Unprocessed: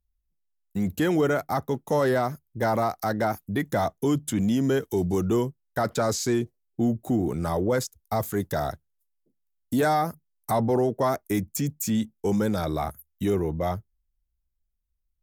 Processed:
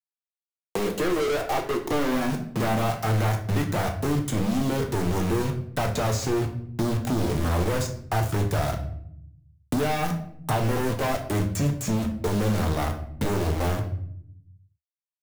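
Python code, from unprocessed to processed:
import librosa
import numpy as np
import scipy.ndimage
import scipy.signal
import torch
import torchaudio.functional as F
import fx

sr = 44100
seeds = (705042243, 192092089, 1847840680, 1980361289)

y = scipy.signal.sosfilt(scipy.signal.butter(2, 9100.0, 'lowpass', fs=sr, output='sos'), x)
y = fx.quant_dither(y, sr, seeds[0], bits=6, dither='none')
y = fx.filter_sweep_highpass(y, sr, from_hz=430.0, to_hz=77.0, start_s=1.47, end_s=3.64, q=4.4)
y = np.clip(10.0 ** (27.5 / 20.0) * y, -1.0, 1.0) / 10.0 ** (27.5 / 20.0)
y = fx.room_shoebox(y, sr, seeds[1], volume_m3=61.0, walls='mixed', distance_m=0.5)
y = fx.band_squash(y, sr, depth_pct=70)
y = F.gain(torch.from_numpy(y), 2.5).numpy()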